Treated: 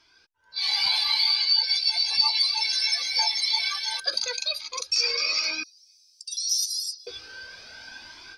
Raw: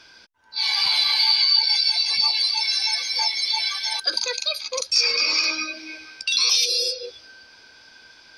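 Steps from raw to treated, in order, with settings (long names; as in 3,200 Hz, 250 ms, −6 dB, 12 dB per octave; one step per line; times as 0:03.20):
0:05.63–0:07.07: inverse Chebyshev high-pass filter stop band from 1,500 Hz, stop band 70 dB
automatic gain control gain up to 16.5 dB
flanger whose copies keep moving one way rising 0.86 Hz
level −7 dB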